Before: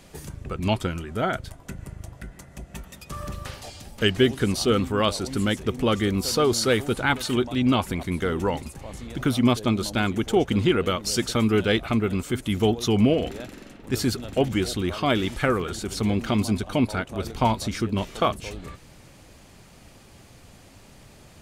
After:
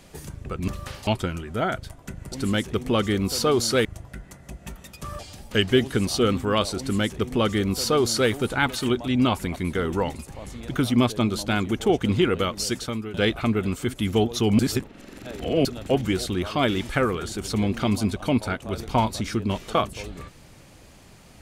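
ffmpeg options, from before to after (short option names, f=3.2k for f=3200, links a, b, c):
-filter_complex "[0:a]asplit=9[a][b][c][d][e][f][g][h][i];[a]atrim=end=0.682[j];[b]atrim=start=3.268:end=3.662[k];[c]atrim=start=0.678:end=1.932[l];[d]atrim=start=5.248:end=6.782[m];[e]atrim=start=1.928:end=3.272[n];[f]atrim=start=3.658:end=11.61,asetpts=PTS-STARTPTS,afade=t=out:st=7.362:d=0.59:silence=0.125893[o];[g]atrim=start=11.61:end=13.062,asetpts=PTS-STARTPTS,afade=t=in:d=0.004:c=hsin:silence=0.125893[p];[h]atrim=start=13.058:end=14.122,asetpts=PTS-STARTPTS,areverse[q];[i]atrim=start=14.118[r];[j][k]acrossfade=d=0.004:c1=hsin:c2=hsin[s];[s][l]acrossfade=d=0.004:c1=hsin:c2=hsin[t];[t][m]acrossfade=d=0.004:c1=hsin:c2=hsin[u];[u][n]acrossfade=d=0.004:c1=hsin:c2=hsin[v];[o][p]concat=n=2:v=0:a=1[w];[v][w]acrossfade=d=0.004:c1=hsin:c2=hsin[x];[x][q]acrossfade=d=0.004:c1=hsin:c2=hsin[y];[y][r]acrossfade=d=0.004:c1=hsin:c2=hsin"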